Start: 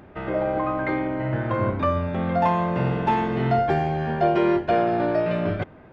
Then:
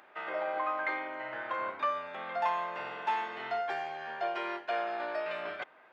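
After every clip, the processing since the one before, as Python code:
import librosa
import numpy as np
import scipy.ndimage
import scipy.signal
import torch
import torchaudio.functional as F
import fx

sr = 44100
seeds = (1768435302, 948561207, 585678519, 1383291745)

y = fx.rider(x, sr, range_db=4, speed_s=2.0)
y = scipy.signal.sosfilt(scipy.signal.butter(2, 960.0, 'highpass', fs=sr, output='sos'), y)
y = y * 10.0 ** (-4.5 / 20.0)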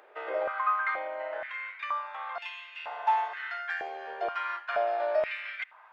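y = fx.rider(x, sr, range_db=3, speed_s=2.0)
y = fx.filter_held_highpass(y, sr, hz=2.1, low_hz=450.0, high_hz=2700.0)
y = y * 10.0 ** (-3.0 / 20.0)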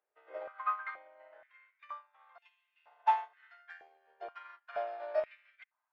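y = fx.upward_expand(x, sr, threshold_db=-43.0, expansion=2.5)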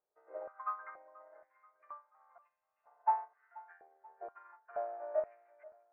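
y = scipy.ndimage.gaussian_filter1d(x, 6.3, mode='constant')
y = fx.echo_feedback(y, sr, ms=483, feedback_pct=47, wet_db=-21.5)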